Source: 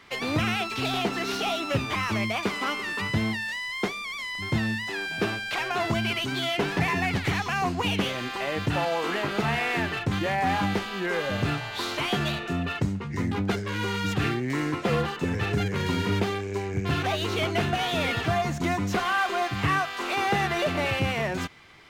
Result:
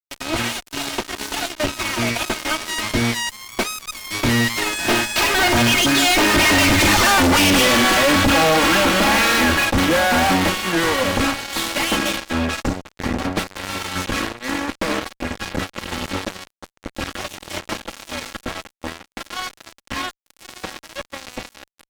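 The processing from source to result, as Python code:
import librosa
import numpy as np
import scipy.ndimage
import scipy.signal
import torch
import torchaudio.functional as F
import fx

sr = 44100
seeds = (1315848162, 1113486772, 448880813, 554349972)

y = fx.lower_of_two(x, sr, delay_ms=3.4)
y = fx.doppler_pass(y, sr, speed_mps=22, closest_m=12.0, pass_at_s=7.25)
y = fx.fuzz(y, sr, gain_db=48.0, gate_db=-50.0)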